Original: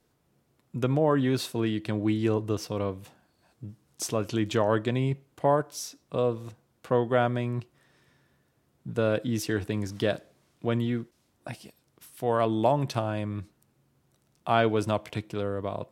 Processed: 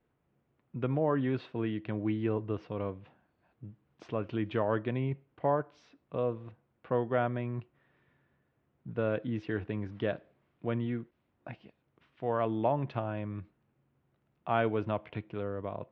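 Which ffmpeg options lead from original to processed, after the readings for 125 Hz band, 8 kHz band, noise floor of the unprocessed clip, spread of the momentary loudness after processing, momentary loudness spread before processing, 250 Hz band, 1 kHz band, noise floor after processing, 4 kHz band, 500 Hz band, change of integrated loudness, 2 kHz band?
-5.5 dB, under -35 dB, -70 dBFS, 18 LU, 17 LU, -5.5 dB, -5.5 dB, -77 dBFS, -13.5 dB, -5.5 dB, -5.5 dB, -6.0 dB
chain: -af "lowpass=f=2.8k:w=0.5412,lowpass=f=2.8k:w=1.3066,volume=-5.5dB"

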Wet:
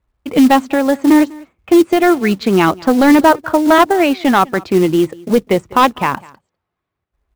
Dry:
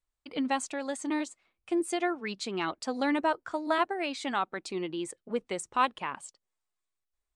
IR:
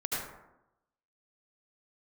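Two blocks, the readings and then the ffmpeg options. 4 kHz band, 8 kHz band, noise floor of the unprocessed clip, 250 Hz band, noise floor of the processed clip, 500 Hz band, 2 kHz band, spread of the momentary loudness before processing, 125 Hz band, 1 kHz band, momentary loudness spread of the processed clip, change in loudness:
+14.0 dB, +11.0 dB, -85 dBFS, +21.5 dB, -78 dBFS, +19.5 dB, +16.0 dB, 9 LU, +25.0 dB, +17.0 dB, 6 LU, +19.0 dB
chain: -filter_complex "[0:a]highpass=76,aemphasis=mode=reproduction:type=bsi,adynamicsmooth=sensitivity=5.5:basefreq=2.6k,apsyclip=22dB,acrusher=bits=5:mode=log:mix=0:aa=0.000001,asplit=2[a][b];[b]aecho=0:1:199:0.0668[c];[a][c]amix=inputs=2:normalize=0,volume=-3dB"

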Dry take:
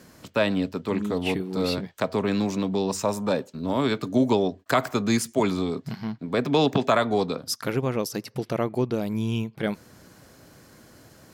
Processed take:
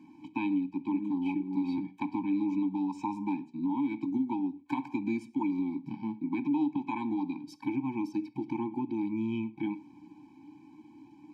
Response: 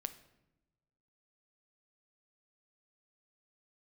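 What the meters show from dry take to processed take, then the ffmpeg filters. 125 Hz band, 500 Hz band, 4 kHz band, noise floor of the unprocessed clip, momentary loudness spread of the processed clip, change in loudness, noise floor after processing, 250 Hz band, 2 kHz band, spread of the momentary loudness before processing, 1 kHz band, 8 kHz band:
-14.5 dB, -19.0 dB, under -20 dB, -54 dBFS, 6 LU, -7.0 dB, -56 dBFS, -3.5 dB, -13.5 dB, 8 LU, -9.0 dB, under -25 dB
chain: -filter_complex "[0:a]asplit=3[a][b][c];[a]bandpass=f=300:t=q:w=8,volume=0dB[d];[b]bandpass=f=870:t=q:w=8,volume=-6dB[e];[c]bandpass=f=2.24k:t=q:w=8,volume=-9dB[f];[d][e][f]amix=inputs=3:normalize=0,acompressor=threshold=-37dB:ratio=6,asplit=2[g][h];[1:a]atrim=start_sample=2205,afade=t=out:st=0.17:d=0.01,atrim=end_sample=7938[i];[h][i]afir=irnorm=-1:irlink=0,volume=8dB[j];[g][j]amix=inputs=2:normalize=0,afftfilt=real='re*eq(mod(floor(b*sr/1024/370),2),0)':imag='im*eq(mod(floor(b*sr/1024/370),2),0)':win_size=1024:overlap=0.75"

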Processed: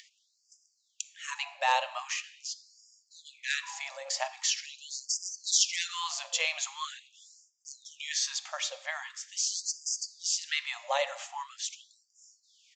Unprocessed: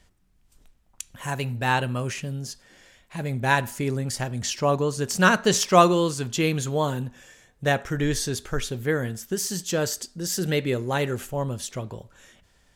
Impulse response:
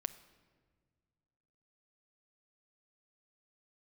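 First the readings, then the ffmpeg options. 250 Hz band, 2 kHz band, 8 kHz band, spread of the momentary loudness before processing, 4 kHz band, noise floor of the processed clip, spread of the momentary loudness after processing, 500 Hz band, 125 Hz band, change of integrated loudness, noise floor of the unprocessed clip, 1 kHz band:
under -40 dB, -7.5 dB, -0.5 dB, 15 LU, -0.5 dB, -74 dBFS, 13 LU, -16.5 dB, under -40 dB, -7.0 dB, -63 dBFS, -9.5 dB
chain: -filter_complex "[0:a]highpass=41,equalizer=f=1.5k:w=4.8:g=-12,acrossover=split=400|3000[a][b][c];[b]acompressor=threshold=-24dB:ratio=6[d];[a][d][c]amix=inputs=3:normalize=0,aresample=16000,aeval=exprs='0.224*(abs(mod(val(0)/0.224+3,4)-2)-1)':c=same,aresample=44100[e];[1:a]atrim=start_sample=2205[f];[e][f]afir=irnorm=-1:irlink=0,acompressor=mode=upward:threshold=-45dB:ratio=2.5,afftfilt=real='re*gte(b*sr/1024,510*pow(4800/510,0.5+0.5*sin(2*PI*0.43*pts/sr)))':imag='im*gte(b*sr/1024,510*pow(4800/510,0.5+0.5*sin(2*PI*0.43*pts/sr)))':win_size=1024:overlap=0.75,volume=2dB"

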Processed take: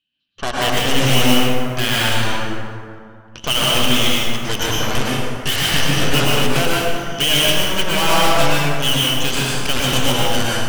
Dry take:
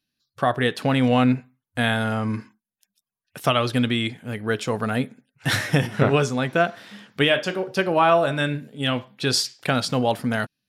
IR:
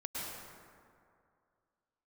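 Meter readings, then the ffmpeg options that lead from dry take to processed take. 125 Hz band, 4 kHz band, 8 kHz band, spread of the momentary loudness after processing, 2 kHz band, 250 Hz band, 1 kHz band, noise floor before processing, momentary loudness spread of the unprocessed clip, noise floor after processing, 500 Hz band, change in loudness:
+3.5 dB, +12.0 dB, +13.0 dB, 7 LU, +5.5 dB, +1.5 dB, +3.5 dB, under -85 dBFS, 9 LU, -40 dBFS, +1.5 dB, +5.5 dB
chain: -filter_complex "[0:a]lowpass=f=3k:t=q:w=15,aeval=exprs='0.531*(cos(1*acos(clip(val(0)/0.531,-1,1)))-cos(1*PI/2))+0.188*(cos(8*acos(clip(val(0)/0.531,-1,1)))-cos(8*PI/2))':c=same[a];[1:a]atrim=start_sample=2205[b];[a][b]afir=irnorm=-1:irlink=0,volume=-3.5dB"

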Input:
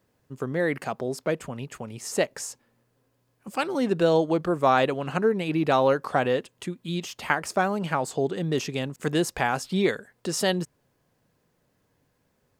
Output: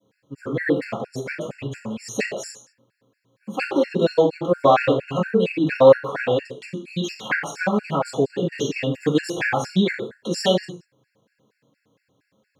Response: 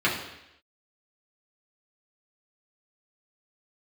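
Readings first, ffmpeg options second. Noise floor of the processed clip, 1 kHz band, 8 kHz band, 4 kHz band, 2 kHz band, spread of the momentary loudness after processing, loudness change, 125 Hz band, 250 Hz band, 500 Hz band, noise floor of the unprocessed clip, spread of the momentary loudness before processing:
-74 dBFS, +1.5 dB, -1.5 dB, +3.5 dB, +3.5 dB, 15 LU, +4.0 dB, +3.0 dB, +4.0 dB, +5.0 dB, -71 dBFS, 13 LU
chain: -filter_complex "[0:a]adynamicequalizer=threshold=0.01:dfrequency=1800:dqfactor=1.4:tfrequency=1800:tqfactor=1.4:attack=5:release=100:ratio=0.375:range=2:mode=cutabove:tftype=bell[a];[1:a]atrim=start_sample=2205,afade=t=out:st=0.37:d=0.01,atrim=end_sample=16758,asetrate=66150,aresample=44100[b];[a][b]afir=irnorm=-1:irlink=0,afftfilt=real='re*gt(sin(2*PI*4.3*pts/sr)*(1-2*mod(floor(b*sr/1024/1400),2)),0)':imag='im*gt(sin(2*PI*4.3*pts/sr)*(1-2*mod(floor(b*sr/1024/1400),2)),0)':win_size=1024:overlap=0.75,volume=-4.5dB"

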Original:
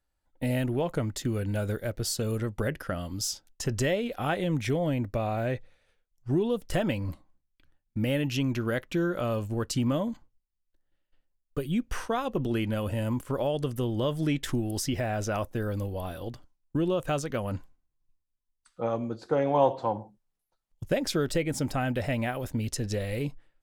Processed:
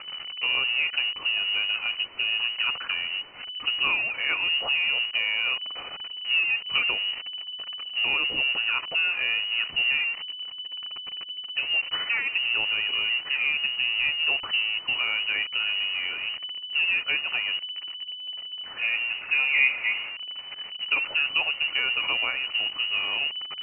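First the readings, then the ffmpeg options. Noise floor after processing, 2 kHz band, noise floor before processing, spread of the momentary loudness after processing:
-40 dBFS, +15.5 dB, -80 dBFS, 11 LU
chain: -af "aeval=exprs='val(0)+0.5*0.0316*sgn(val(0))':c=same,lowpass=f=2.6k:t=q:w=0.5098,lowpass=f=2.6k:t=q:w=0.6013,lowpass=f=2.6k:t=q:w=0.9,lowpass=f=2.6k:t=q:w=2.563,afreqshift=-3000,bandreject=f=1.6k:w=9.1"

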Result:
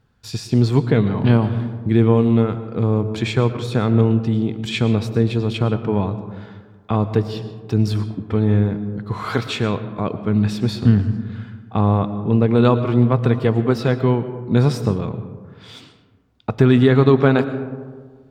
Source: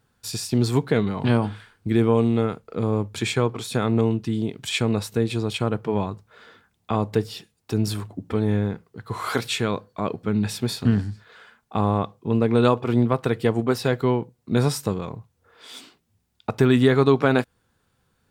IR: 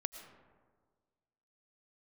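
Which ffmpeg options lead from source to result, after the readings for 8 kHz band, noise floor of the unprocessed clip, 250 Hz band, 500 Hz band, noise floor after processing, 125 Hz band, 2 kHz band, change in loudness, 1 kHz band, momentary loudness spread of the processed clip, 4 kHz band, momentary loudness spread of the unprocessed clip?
n/a, -70 dBFS, +5.0 dB, +3.0 dB, -49 dBFS, +7.0 dB, +1.5 dB, +4.5 dB, +2.0 dB, 13 LU, 0.0 dB, 14 LU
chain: -filter_complex "[0:a]asplit=2[a][b];[1:a]atrim=start_sample=2205,lowpass=6k,lowshelf=f=230:g=9.5[c];[b][c]afir=irnorm=-1:irlink=0,volume=7dB[d];[a][d]amix=inputs=2:normalize=0,volume=-8dB"

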